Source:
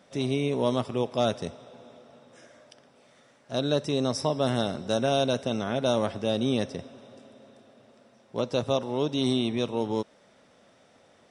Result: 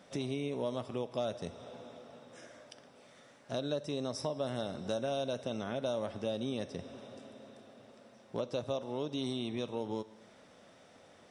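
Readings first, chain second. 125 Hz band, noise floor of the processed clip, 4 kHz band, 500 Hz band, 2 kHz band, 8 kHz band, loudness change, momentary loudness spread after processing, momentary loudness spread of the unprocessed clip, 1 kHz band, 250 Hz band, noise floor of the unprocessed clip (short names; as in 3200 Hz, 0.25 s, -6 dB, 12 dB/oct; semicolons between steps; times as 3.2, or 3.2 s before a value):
-10.5 dB, -60 dBFS, -10.5 dB, -8.5 dB, -10.0 dB, -9.5 dB, -9.5 dB, 17 LU, 7 LU, -10.5 dB, -10.0 dB, -60 dBFS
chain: two-slope reverb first 0.66 s, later 1.8 s, from -25 dB, DRR 15.5 dB; dynamic EQ 580 Hz, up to +6 dB, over -35 dBFS, Q 4.7; compressor 3:1, threshold -36 dBFS, peak gain reduction 14 dB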